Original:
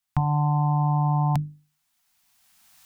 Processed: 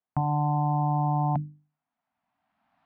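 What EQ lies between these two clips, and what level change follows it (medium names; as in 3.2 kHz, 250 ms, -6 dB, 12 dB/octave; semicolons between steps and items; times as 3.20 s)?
band-pass filter 440 Hz, Q 1.5; distance through air 360 m; +8.0 dB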